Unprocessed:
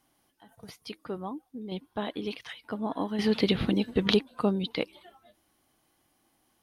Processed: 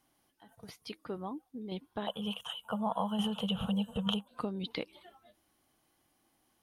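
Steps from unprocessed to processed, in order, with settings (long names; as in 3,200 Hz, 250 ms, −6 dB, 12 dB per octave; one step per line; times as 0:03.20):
downward compressor 10 to 1, threshold −29 dBFS, peak gain reduction 12 dB
0:02.07–0:04.28: drawn EQ curve 140 Hz 0 dB, 200 Hz +8 dB, 320 Hz −29 dB, 480 Hz +4 dB, 910 Hz +9 dB, 1,400 Hz +5 dB, 2,100 Hz −20 dB, 3,000 Hz +12 dB, 4,600 Hz −21 dB, 7,000 Hz +9 dB
level −3 dB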